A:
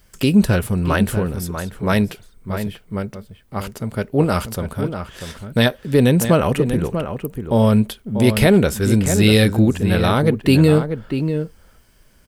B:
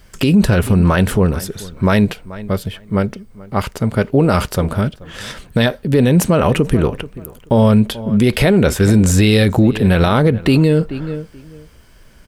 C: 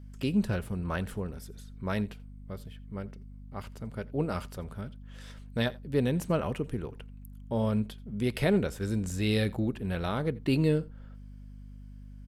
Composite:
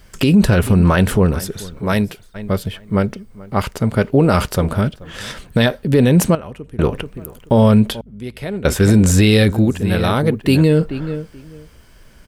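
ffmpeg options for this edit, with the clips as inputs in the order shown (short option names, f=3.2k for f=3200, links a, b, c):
-filter_complex "[0:a]asplit=2[a][b];[2:a]asplit=2[c][d];[1:a]asplit=5[e][f][g][h][i];[e]atrim=end=1.8[j];[a]atrim=start=1.78:end=2.36[k];[f]atrim=start=2.34:end=6.352[l];[c]atrim=start=6.348:end=6.792[m];[g]atrim=start=6.788:end=8.012[n];[d]atrim=start=8.008:end=8.652[o];[h]atrim=start=8.648:end=9.512[p];[b]atrim=start=9.508:end=10.632[q];[i]atrim=start=10.628[r];[j][k]acrossfade=d=0.02:c1=tri:c2=tri[s];[s][l]acrossfade=d=0.02:c1=tri:c2=tri[t];[t][m]acrossfade=d=0.004:c1=hsin:c2=hsin[u];[u][n]acrossfade=d=0.004:c1=hsin:c2=hsin[v];[v][o]acrossfade=d=0.004:c1=hsin:c2=hsin[w];[w][p]acrossfade=d=0.004:c1=hsin:c2=hsin[x];[x][q]acrossfade=d=0.004:c1=hsin:c2=hsin[y];[y][r]acrossfade=d=0.004:c1=hsin:c2=hsin"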